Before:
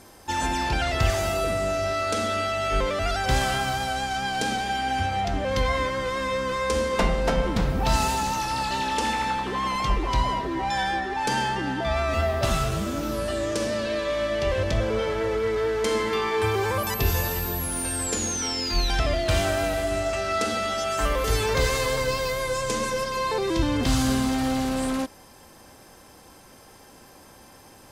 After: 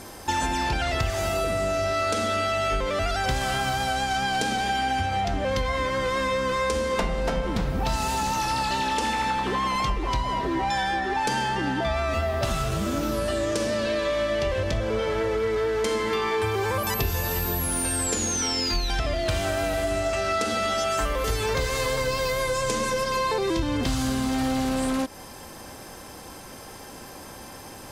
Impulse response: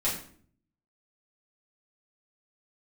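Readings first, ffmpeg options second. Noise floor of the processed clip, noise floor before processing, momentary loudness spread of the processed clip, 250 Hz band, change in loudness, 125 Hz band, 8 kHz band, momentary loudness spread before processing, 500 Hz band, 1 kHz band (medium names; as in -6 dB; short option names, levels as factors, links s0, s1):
-42 dBFS, -50 dBFS, 4 LU, -0.5 dB, 0.0 dB, -1.5 dB, +0.5 dB, 3 LU, 0.0 dB, 0.0 dB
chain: -af "acompressor=threshold=0.0282:ratio=6,volume=2.51"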